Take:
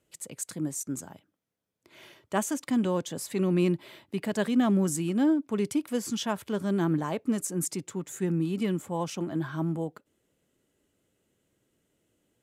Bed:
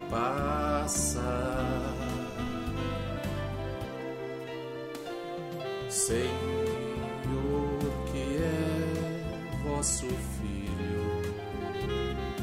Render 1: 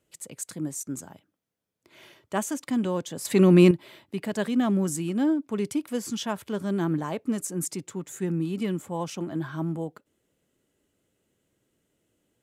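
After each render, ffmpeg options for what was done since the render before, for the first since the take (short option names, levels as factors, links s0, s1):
-filter_complex "[0:a]asplit=3[s0][s1][s2];[s0]atrim=end=3.252[s3];[s1]atrim=start=3.248:end=3.712,asetpts=PTS-STARTPTS,volume=2.82[s4];[s2]atrim=start=3.708[s5];[s3][s4]acrossfade=d=0.004:c1=hsin:c2=hsin[s6];[s6][s5]acrossfade=d=0.004:c1=hsin:c2=hsin"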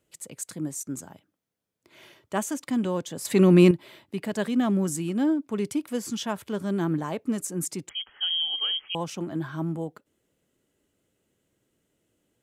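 -filter_complex "[0:a]asettb=1/sr,asplit=3[s0][s1][s2];[s0]atrim=end=7.894[s3];[s1]atrim=start=7.89:end=8.95,asetpts=PTS-STARTPTS,afade=t=in:d=0.004:c=qsin,afade=t=out:st=1.056:d=0.004:c=qsin,lowpass=f=2900:t=q:w=0.5098,lowpass=f=2900:t=q:w=0.6013,lowpass=f=2900:t=q:w=0.9,lowpass=f=2900:t=q:w=2.563,afreqshift=-3400[s4];[s2]atrim=start=8.946[s5];[s3][s4]acrossfade=d=0.004:c1=hsin:c2=qsin[s6];[s6][s5]acrossfade=d=0.004:c1=qsin:c2=hsin"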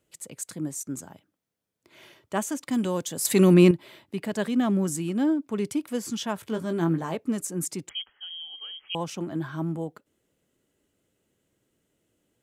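-filter_complex "[0:a]asettb=1/sr,asplit=3[s0][s1][s2];[s0]atrim=end=2.714[s3];[s1]atrim=start=2.71:end=3.54,asetpts=PTS-STARTPTS,afade=t=in:d=0.004:c=qsin,afade=t=out:st=0.826:d=0.004:c=qsin,highshelf=f=5200:g=11[s4];[s2]atrim=start=3.536[s5];[s3][s4]acrossfade=d=0.004:c1=hsin:c2=qsin[s6];[s6][s5]acrossfade=d=0.004:c1=qsin:c2=hsin,asettb=1/sr,asplit=3[s7][s8][s9];[s7]atrim=end=6.414[s10];[s8]atrim=start=6.41:end=7.16,asetpts=PTS-STARTPTS,afade=t=in:d=0.004:c=qsin,afade=t=out:st=0.746:d=0.004:c=qsin,asplit=2[s11][s12];[s12]adelay=18,volume=0.422[s13];[s11][s13]amix=inputs=2:normalize=0,atrim=end_sample=33075[s14];[s9]atrim=start=7.156[s15];[s10][s14]acrossfade=d=0.004:c1=hsin:c2=qsin[s16];[s16][s15]acrossfade=d=0.004:c1=qsin:c2=hsin,asplit=3[s17][s18][s19];[s17]atrim=end=8.15,asetpts=PTS-STARTPTS,afade=t=out:st=7.97:d=0.18:silence=0.251189[s20];[s18]atrim=start=8.15:end=8.77,asetpts=PTS-STARTPTS,volume=0.251[s21];[s19]atrim=start=8.77,asetpts=PTS-STARTPTS,afade=t=in:d=0.18:silence=0.251189[s22];[s20][s21][s22]concat=n=3:v=0:a=1"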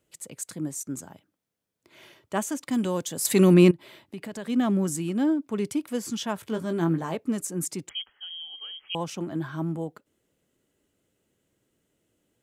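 -filter_complex "[0:a]asplit=3[s0][s1][s2];[s0]afade=t=out:st=3.7:d=0.02[s3];[s1]acompressor=threshold=0.02:ratio=3:attack=3.2:release=140:knee=1:detection=peak,afade=t=in:st=3.7:d=0.02,afade=t=out:st=4.48:d=0.02[s4];[s2]afade=t=in:st=4.48:d=0.02[s5];[s3][s4][s5]amix=inputs=3:normalize=0"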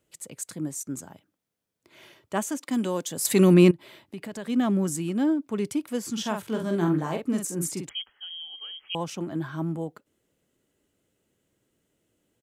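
-filter_complex "[0:a]asettb=1/sr,asplit=3[s0][s1][s2];[s0]atrim=end=2.584[s3];[s1]atrim=start=2.58:end=3.1,asetpts=PTS-STARTPTS,afade=t=in:d=0.004:c=qsin,afade=t=out:st=0.516:d=0.004:c=qsin,highpass=f=180:w=0.5412,highpass=f=180:w=1.3066[s4];[s2]atrim=start=3.096[s5];[s3][s4]acrossfade=d=0.004:c1=hsin:c2=qsin[s6];[s6][s5]acrossfade=d=0.004:c1=qsin:c2=hsin,asplit=3[s7][s8][s9];[s7]afade=t=out:st=6.16:d=0.02[s10];[s8]asplit=2[s11][s12];[s12]adelay=46,volume=0.562[s13];[s11][s13]amix=inputs=2:normalize=0,afade=t=in:st=6.16:d=0.02,afade=t=out:st=7.88:d=0.02[s14];[s9]afade=t=in:st=7.88:d=0.02[s15];[s10][s14][s15]amix=inputs=3:normalize=0"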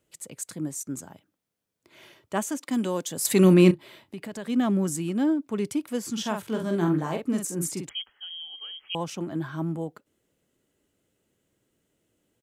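-filter_complex "[0:a]asettb=1/sr,asplit=3[s0][s1][s2];[s0]atrim=end=3.414[s3];[s1]atrim=start=3.41:end=4.17,asetpts=PTS-STARTPTS,afade=t=in:d=0.004:c=qsin,afade=t=out:st=0.756:d=0.004:c=qsin,asplit=2[s4][s5];[s5]adelay=32,volume=0.251[s6];[s4][s6]amix=inputs=2:normalize=0,atrim=end_sample=33516[s7];[s2]atrim=start=4.166[s8];[s3][s7]acrossfade=d=0.004:c1=hsin:c2=qsin[s9];[s9][s8]acrossfade=d=0.004:c1=qsin:c2=hsin"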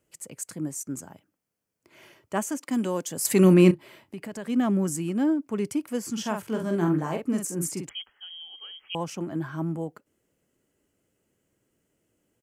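-af "equalizer=f=3700:t=o:w=0.32:g=-9.5"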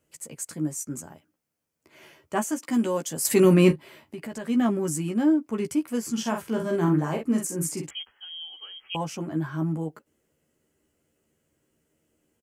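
-filter_complex "[0:a]asplit=2[s0][s1];[s1]adelay=13,volume=0.596[s2];[s0][s2]amix=inputs=2:normalize=0"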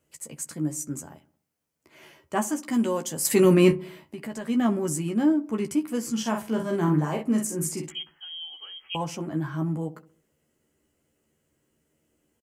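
-filter_complex "[0:a]asplit=2[s0][s1];[s1]adelay=14,volume=0.2[s2];[s0][s2]amix=inputs=2:normalize=0,asplit=2[s3][s4];[s4]adelay=65,lowpass=f=1000:p=1,volume=0.158,asplit=2[s5][s6];[s6]adelay=65,lowpass=f=1000:p=1,volume=0.54,asplit=2[s7][s8];[s8]adelay=65,lowpass=f=1000:p=1,volume=0.54,asplit=2[s9][s10];[s10]adelay=65,lowpass=f=1000:p=1,volume=0.54,asplit=2[s11][s12];[s12]adelay=65,lowpass=f=1000:p=1,volume=0.54[s13];[s3][s5][s7][s9][s11][s13]amix=inputs=6:normalize=0"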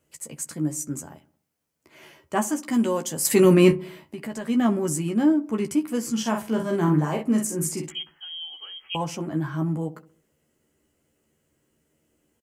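-af "volume=1.26"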